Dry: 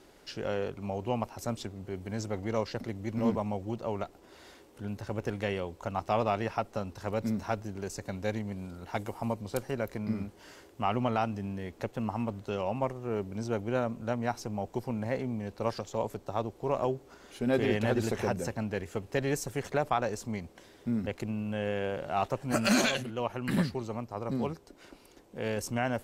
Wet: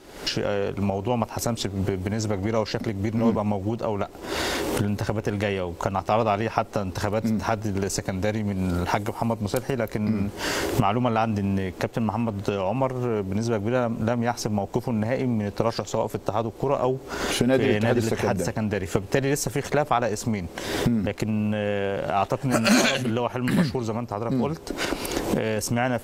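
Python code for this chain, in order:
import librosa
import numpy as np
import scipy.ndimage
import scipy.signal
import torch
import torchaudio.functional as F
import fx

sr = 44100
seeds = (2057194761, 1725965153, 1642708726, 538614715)

y = fx.recorder_agc(x, sr, target_db=-23.0, rise_db_per_s=68.0, max_gain_db=30)
y = y * librosa.db_to_amplitude(6.5)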